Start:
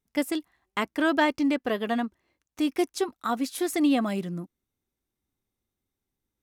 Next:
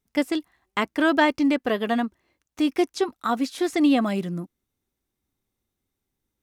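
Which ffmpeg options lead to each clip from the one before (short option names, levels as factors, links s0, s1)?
-filter_complex "[0:a]acrossover=split=6800[s0][s1];[s1]acompressor=threshold=0.00251:ratio=4:attack=1:release=60[s2];[s0][s2]amix=inputs=2:normalize=0,volume=1.5"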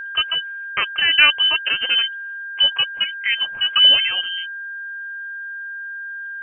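-af "aphaser=in_gain=1:out_gain=1:delay=4:decay=0.37:speed=0.79:type=sinusoidal,lowpass=f=2800:t=q:w=0.5098,lowpass=f=2800:t=q:w=0.6013,lowpass=f=2800:t=q:w=0.9,lowpass=f=2800:t=q:w=2.563,afreqshift=-3300,aeval=exprs='val(0)+0.0282*sin(2*PI*1600*n/s)':c=same,volume=1.41"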